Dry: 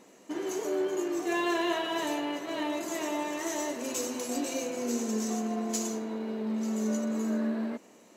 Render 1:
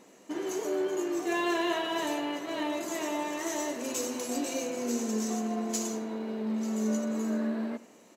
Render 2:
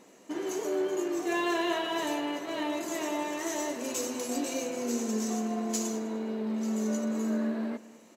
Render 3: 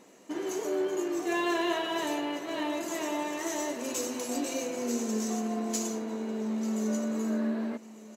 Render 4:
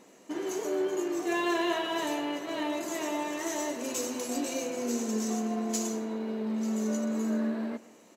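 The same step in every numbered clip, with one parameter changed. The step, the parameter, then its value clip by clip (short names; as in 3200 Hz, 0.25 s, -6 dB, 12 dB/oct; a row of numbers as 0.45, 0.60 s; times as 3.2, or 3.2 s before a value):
feedback echo, time: 83, 204, 1198, 127 ms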